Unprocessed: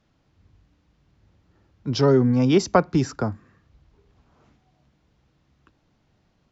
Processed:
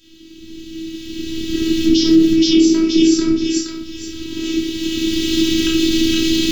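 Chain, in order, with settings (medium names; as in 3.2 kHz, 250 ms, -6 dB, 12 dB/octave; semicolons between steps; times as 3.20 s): recorder AGC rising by 14 dB/s; bass shelf 170 Hz -7.5 dB; compression 4:1, threshold -33 dBFS, peak gain reduction 17 dB; FFT filter 110 Hz 0 dB, 160 Hz +5 dB, 240 Hz +10 dB, 350 Hz +12 dB, 520 Hz -26 dB, 820 Hz -28 dB, 3.3 kHz +14 dB, 5.1 kHz +8 dB, 10 kHz +14 dB; on a send: thinning echo 471 ms, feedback 31%, high-pass 890 Hz, level -3 dB; on the sum: simulated room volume 690 m³, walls furnished, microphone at 5 m; robot voice 324 Hz; loudness maximiser +13 dB; trim -1 dB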